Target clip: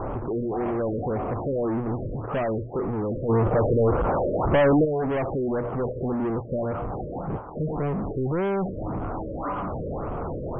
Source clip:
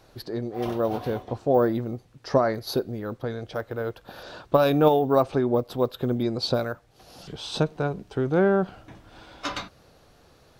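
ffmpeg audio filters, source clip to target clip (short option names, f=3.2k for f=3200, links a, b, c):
-filter_complex "[0:a]aeval=exprs='val(0)+0.5*0.0891*sgn(val(0))':c=same,asuperstop=centerf=3000:order=12:qfactor=0.58,bandreject=f=60:t=h:w=6,bandreject=f=120:t=h:w=6,asoftclip=type=tanh:threshold=-23dB,asplit=3[a][b][c];[a]afade=t=out:st=3.28:d=0.02[d];[b]acontrast=89,afade=t=in:st=3.28:d=0.02,afade=t=out:st=4.84:d=0.02[e];[c]afade=t=in:st=4.84:d=0.02[f];[d][e][f]amix=inputs=3:normalize=0,afftfilt=real='re*lt(b*sr/1024,600*pow(3400/600,0.5+0.5*sin(2*PI*1.8*pts/sr)))':imag='im*lt(b*sr/1024,600*pow(3400/600,0.5+0.5*sin(2*PI*1.8*pts/sr)))':win_size=1024:overlap=0.75"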